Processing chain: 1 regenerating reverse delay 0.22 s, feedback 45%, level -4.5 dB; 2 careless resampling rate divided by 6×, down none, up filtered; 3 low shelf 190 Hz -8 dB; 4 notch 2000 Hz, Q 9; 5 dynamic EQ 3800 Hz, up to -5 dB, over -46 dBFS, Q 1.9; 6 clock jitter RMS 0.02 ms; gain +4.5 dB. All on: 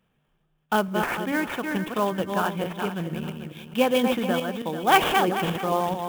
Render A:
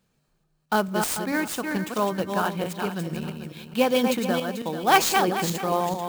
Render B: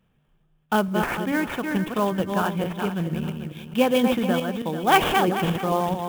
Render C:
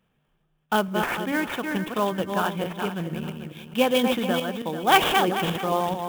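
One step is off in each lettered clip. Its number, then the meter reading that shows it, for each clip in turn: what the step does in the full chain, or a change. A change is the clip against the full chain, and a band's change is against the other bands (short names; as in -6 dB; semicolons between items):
2, 8 kHz band +8.5 dB; 3, 125 Hz band +4.0 dB; 5, 4 kHz band +3.0 dB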